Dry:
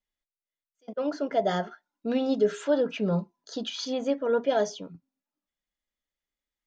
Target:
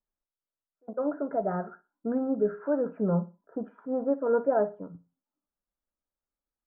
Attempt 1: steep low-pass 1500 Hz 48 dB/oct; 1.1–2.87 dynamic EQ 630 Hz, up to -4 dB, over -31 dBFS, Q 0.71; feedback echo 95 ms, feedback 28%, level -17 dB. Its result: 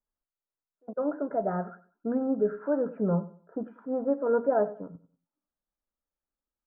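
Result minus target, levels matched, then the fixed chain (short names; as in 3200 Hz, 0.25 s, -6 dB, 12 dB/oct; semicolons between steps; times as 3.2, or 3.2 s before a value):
echo 37 ms late
steep low-pass 1500 Hz 48 dB/oct; 1.1–2.87 dynamic EQ 630 Hz, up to -4 dB, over -31 dBFS, Q 0.71; feedback echo 58 ms, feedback 28%, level -17 dB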